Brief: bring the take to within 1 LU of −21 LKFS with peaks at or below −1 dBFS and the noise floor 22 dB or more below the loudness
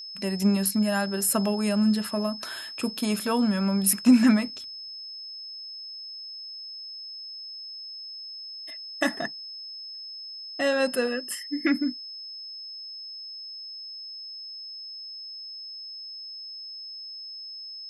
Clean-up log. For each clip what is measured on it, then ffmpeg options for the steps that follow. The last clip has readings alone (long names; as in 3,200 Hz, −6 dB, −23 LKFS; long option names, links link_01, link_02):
interfering tone 5,200 Hz; level of the tone −37 dBFS; integrated loudness −28.5 LKFS; sample peak −8.5 dBFS; target loudness −21.0 LKFS
→ -af "bandreject=frequency=5200:width=30"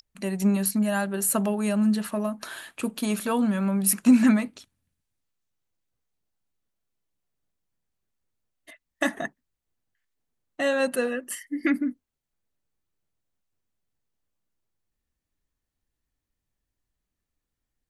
interfering tone none found; integrated loudness −25.0 LKFS; sample peak −8.5 dBFS; target loudness −21.0 LKFS
→ -af "volume=4dB"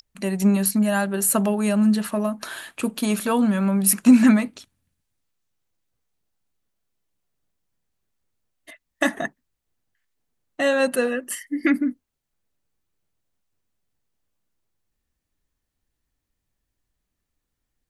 integrated loudness −21.0 LKFS; sample peak −4.5 dBFS; background noise floor −80 dBFS